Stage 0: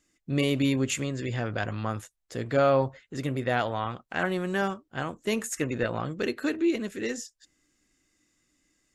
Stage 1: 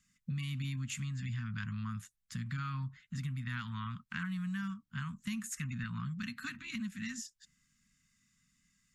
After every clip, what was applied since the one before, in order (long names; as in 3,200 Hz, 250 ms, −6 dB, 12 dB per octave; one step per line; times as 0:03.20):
inverse Chebyshev band-stop filter 320–750 Hz, stop band 40 dB
parametric band 180 Hz +9 dB 1.6 octaves
downward compressor 4 to 1, threshold −34 dBFS, peak gain reduction 12 dB
level −3 dB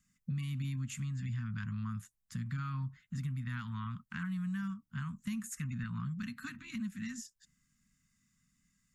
parametric band 3,300 Hz −7 dB 2.4 octaves
level +1 dB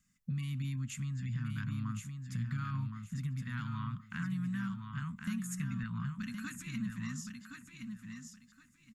repeating echo 1,068 ms, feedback 22%, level −6 dB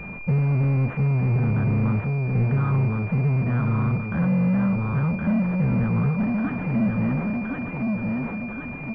in parallel at −5.5 dB: bit-depth reduction 6 bits, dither none
on the sum: power curve on the samples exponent 0.35
switching amplifier with a slow clock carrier 2,400 Hz
level +6 dB